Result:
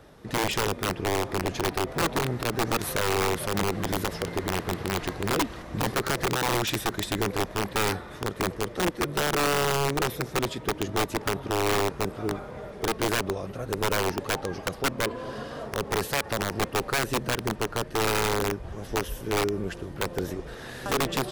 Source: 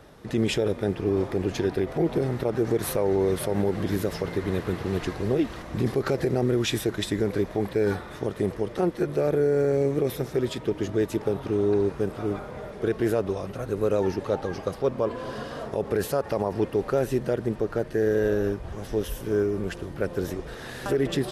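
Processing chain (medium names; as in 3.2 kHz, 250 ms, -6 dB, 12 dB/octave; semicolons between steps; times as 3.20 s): integer overflow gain 17.5 dB; trim -1.5 dB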